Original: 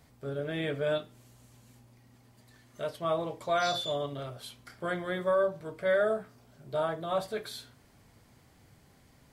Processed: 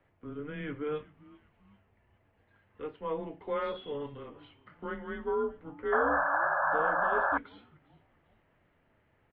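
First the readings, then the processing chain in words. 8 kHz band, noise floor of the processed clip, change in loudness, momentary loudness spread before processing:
under -30 dB, -70 dBFS, 0.0 dB, 12 LU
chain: frequency-shifting echo 392 ms, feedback 47%, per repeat -130 Hz, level -21.5 dB; painted sound noise, 5.92–7.38 s, 680–1900 Hz -24 dBFS; mistuned SSB -150 Hz 210–2900 Hz; trim -4.5 dB

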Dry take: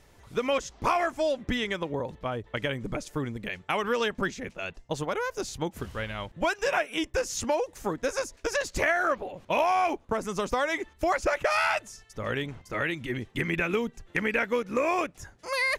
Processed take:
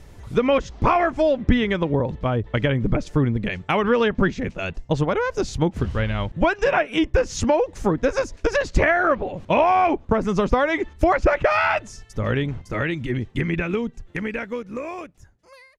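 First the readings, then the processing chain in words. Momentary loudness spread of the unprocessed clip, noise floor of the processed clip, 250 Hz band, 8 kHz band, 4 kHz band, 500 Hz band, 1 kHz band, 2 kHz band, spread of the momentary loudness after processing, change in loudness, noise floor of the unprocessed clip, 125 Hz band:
9 LU, -51 dBFS, +10.5 dB, -1.0 dB, +2.0 dB, +7.5 dB, +6.0 dB, +4.0 dB, 9 LU, +7.0 dB, -58 dBFS, +13.5 dB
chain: fade out at the end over 4.26 s; bass shelf 300 Hz +11 dB; low-pass that closes with the level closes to 3 kHz, closed at -21 dBFS; trim +5.5 dB

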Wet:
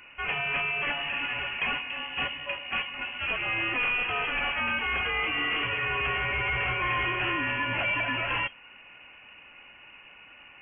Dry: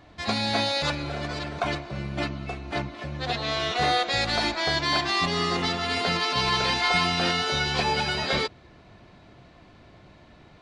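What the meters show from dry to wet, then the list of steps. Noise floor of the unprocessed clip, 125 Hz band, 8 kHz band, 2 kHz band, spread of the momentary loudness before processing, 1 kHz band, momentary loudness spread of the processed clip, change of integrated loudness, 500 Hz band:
-52 dBFS, -8.5 dB, under -40 dB, +2.0 dB, 9 LU, -5.5 dB, 5 LU, -2.5 dB, -8.5 dB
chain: high-pass 320 Hz 24 dB/octave; valve stage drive 30 dB, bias 0.25; frequency inversion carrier 3.2 kHz; trim +5.5 dB

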